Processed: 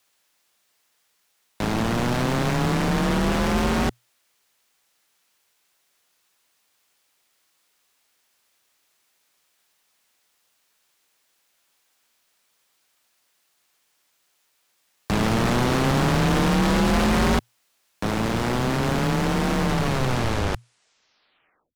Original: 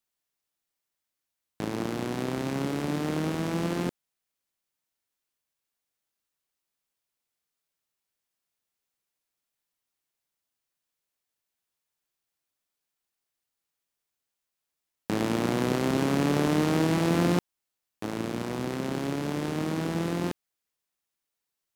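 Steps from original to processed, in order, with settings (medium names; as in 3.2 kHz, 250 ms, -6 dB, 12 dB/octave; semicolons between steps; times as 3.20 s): tape stop on the ending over 2.23 s; overdrive pedal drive 26 dB, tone 7.5 kHz, clips at -11.5 dBFS; frequency shift -120 Hz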